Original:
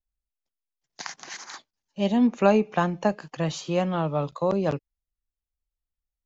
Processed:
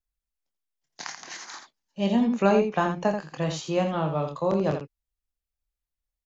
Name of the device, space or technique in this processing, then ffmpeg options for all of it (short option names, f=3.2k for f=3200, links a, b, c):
slapback doubling: -filter_complex "[0:a]asplit=3[a][b][c];[b]adelay=26,volume=-7dB[d];[c]adelay=84,volume=-7.5dB[e];[a][d][e]amix=inputs=3:normalize=0,volume=-1.5dB"